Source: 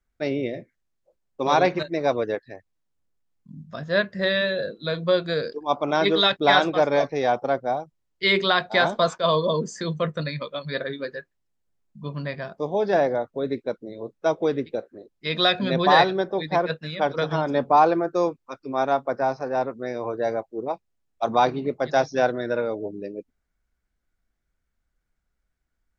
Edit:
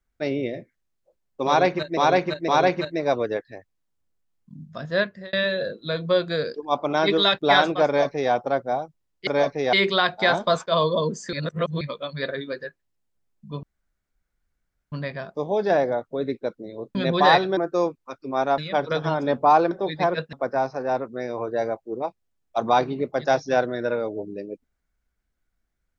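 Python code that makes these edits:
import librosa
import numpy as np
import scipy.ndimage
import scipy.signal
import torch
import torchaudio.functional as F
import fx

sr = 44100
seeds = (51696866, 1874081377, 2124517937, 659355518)

y = fx.edit(x, sr, fx.repeat(start_s=1.46, length_s=0.51, count=3),
    fx.fade_out_span(start_s=3.94, length_s=0.37),
    fx.duplicate(start_s=6.84, length_s=0.46, to_s=8.25),
    fx.reverse_span(start_s=9.85, length_s=0.48),
    fx.insert_room_tone(at_s=12.15, length_s=1.29),
    fx.cut(start_s=14.18, length_s=1.43),
    fx.swap(start_s=16.23, length_s=0.62, other_s=17.98, other_length_s=1.01), tone=tone)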